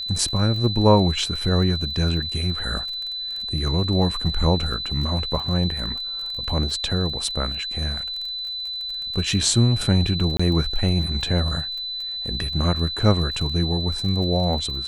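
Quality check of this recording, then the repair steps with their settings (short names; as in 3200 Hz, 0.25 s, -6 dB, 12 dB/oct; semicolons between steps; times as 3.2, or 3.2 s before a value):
crackle 27/s -30 dBFS
tone 4000 Hz -27 dBFS
10.37–10.39 gap 25 ms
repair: de-click; notch 4000 Hz, Q 30; interpolate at 10.37, 25 ms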